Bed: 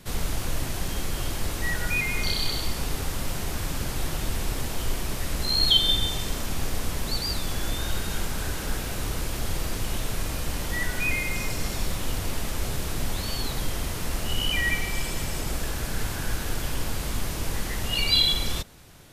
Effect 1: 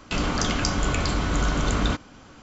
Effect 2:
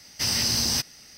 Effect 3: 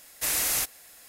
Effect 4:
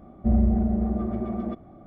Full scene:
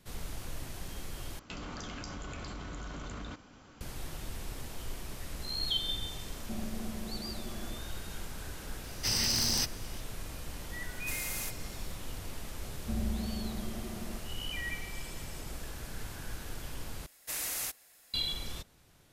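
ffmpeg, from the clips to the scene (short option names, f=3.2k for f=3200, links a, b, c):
-filter_complex "[4:a]asplit=2[a][b];[3:a]asplit=2[c][d];[0:a]volume=-12.5dB[e];[1:a]acompressor=threshold=-32dB:ratio=6:attack=4.6:release=31:knee=1:detection=rms[f];[a]highpass=200[g];[2:a]aeval=exprs='(mod(5.01*val(0)+1,2)-1)/5.01':c=same[h];[c]aeval=exprs='clip(val(0),-1,0.0794)':c=same[i];[e]asplit=3[j][k][l];[j]atrim=end=1.394[m];[f]atrim=end=2.42,asetpts=PTS-STARTPTS,volume=-8dB[n];[k]atrim=start=3.806:end=17.064[o];[d]atrim=end=1.08,asetpts=PTS-STARTPTS,volume=-9.5dB[p];[l]atrim=start=18.136[q];[g]atrim=end=1.86,asetpts=PTS-STARTPTS,volume=-15dB,afade=t=in:d=0.004:c=hsin,afade=t=out:st=1.856:d=0.004:c=hsin,adelay=6240[r];[h]atrim=end=1.17,asetpts=PTS-STARTPTS,volume=-5.5dB,afade=t=in:d=0.004:c=hsin,afade=t=out:st=1.166:d=0.004:c=hsin,adelay=8840[s];[i]atrim=end=1.08,asetpts=PTS-STARTPTS,volume=-12dB,afade=t=in:d=0.004:c=hsin,afade=t=out:st=1.076:d=0.004:c=hsin,adelay=10850[t];[b]atrim=end=1.86,asetpts=PTS-STARTPTS,volume=-14dB,afade=t=in:d=0.004:c=hsin,afade=t=out:st=1.856:d=0.004:c=hsin,adelay=12630[u];[m][n]acrossfade=d=0.004:c1=hsin:c2=hsin[v];[v][o]acrossfade=d=0.004:c1=hsin:c2=hsin[w];[w][p]acrossfade=d=0.004:c1=hsin:c2=hsin[x];[x][q]acrossfade=d=0.004:c1=hsin:c2=hsin[y];[y][r][s][t][u]amix=inputs=5:normalize=0"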